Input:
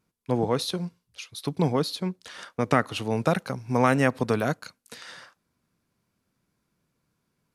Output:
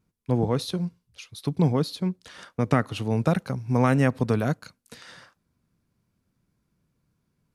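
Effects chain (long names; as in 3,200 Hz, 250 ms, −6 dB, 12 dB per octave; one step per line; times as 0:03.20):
low-shelf EQ 230 Hz +11.5 dB
level −3.5 dB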